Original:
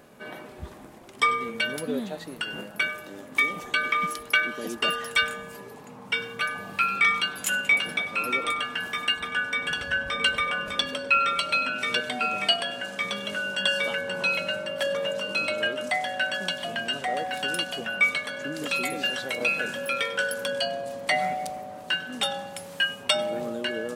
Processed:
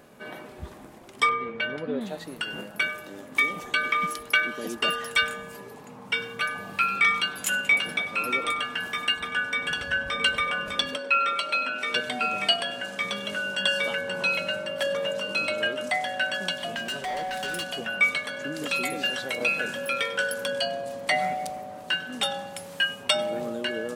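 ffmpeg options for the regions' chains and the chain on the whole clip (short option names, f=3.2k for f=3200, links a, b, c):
-filter_complex "[0:a]asettb=1/sr,asplit=3[a][b][c];[a]atrim=end=1.294[d];[b]atrim=start=1.29:end=2.01,asetpts=PTS-STARTPTS,afade=t=in:d=0.004:c=qsin,afade=t=out:st=0.716:d=0.004:c=qsin,lowpass=2.5k,equalizer=f=230:w=7:g=-4.5[e];[c]atrim=start=2.006[f];[d][e]acrossfade=d=0.004:c1=hsin:c2=qsin[g];[g][f]acrossfade=d=0.004:c1=qsin:c2=hsin,asettb=1/sr,asplit=3[h][i][j];[h]atrim=end=10.964[k];[i]atrim=start=10.96:end=11.95,asetpts=PTS-STARTPTS,afade=t=in:d=0.004:c=qsin,afade=t=out:st=0.986:d=0.004:c=qsin,highpass=280,highshelf=f=3.8k:g=-5.5[l];[j]atrim=start=11.946[m];[k][l]acrossfade=d=0.004:c1=hsin:c2=qsin[n];[n][m]acrossfade=d=0.004:c1=qsin:c2=hsin,asettb=1/sr,asplit=3[o][p][q];[o]atrim=end=16.764[r];[p]atrim=start=16.76:end=17.67,asetpts=PTS-STARTPTS,afade=t=in:d=0.004:c=qsin,afade=t=out:st=0.906:d=0.004:c=qsin,aecho=1:1:5.2:0.41,atrim=end_sample=40131,asoftclip=type=hard:threshold=-28dB[s];[q]atrim=start=17.666[t];[r][s]acrossfade=d=0.004:c1=hsin:c2=qsin[u];[u][t]acrossfade=d=0.004:c1=qsin:c2=hsin"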